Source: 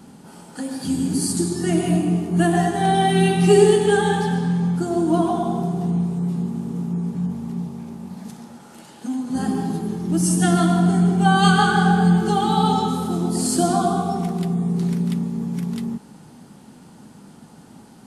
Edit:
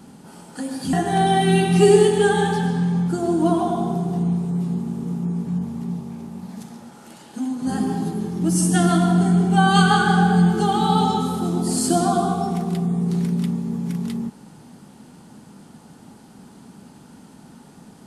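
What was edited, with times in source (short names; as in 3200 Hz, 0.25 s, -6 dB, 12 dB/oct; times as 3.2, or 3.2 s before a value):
0.93–2.61 cut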